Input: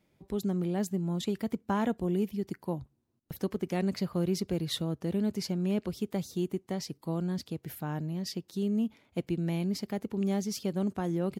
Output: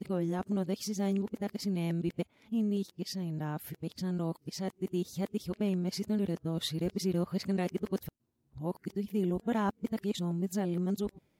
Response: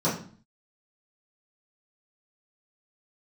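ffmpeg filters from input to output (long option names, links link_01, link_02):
-af "areverse,volume=-1.5dB"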